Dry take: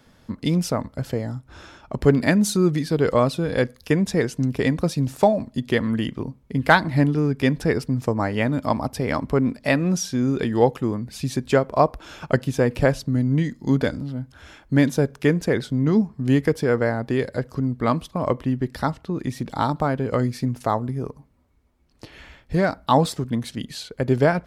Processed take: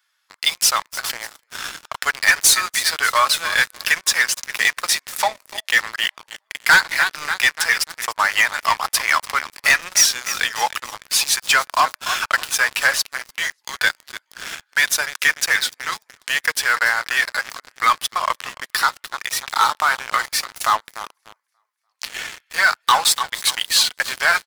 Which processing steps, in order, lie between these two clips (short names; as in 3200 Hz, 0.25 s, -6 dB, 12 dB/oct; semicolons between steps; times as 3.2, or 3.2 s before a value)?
in parallel at +1 dB: compressor 10:1, threshold -28 dBFS, peak gain reduction 19 dB; 5.09–6.4 on the sum: high shelf 2700 Hz -4 dB; feedback echo 0.293 s, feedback 54%, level -14.5 dB; on a send at -21.5 dB: reverb RT60 0.55 s, pre-delay 3 ms; on the sum: flange 0.99 Hz, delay 2.6 ms, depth 2.3 ms, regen +68%; HPF 1200 Hz 24 dB/oct; high shelf 11000 Hz +5.5 dB; sample leveller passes 5